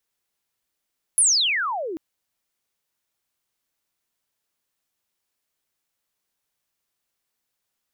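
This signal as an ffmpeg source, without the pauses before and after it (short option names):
-f lavfi -i "aevalsrc='pow(10,(-13-15*t/0.79)/20)*sin(2*PI*11000*0.79/log(300/11000)*(exp(log(300/11000)*t/0.79)-1))':d=0.79:s=44100"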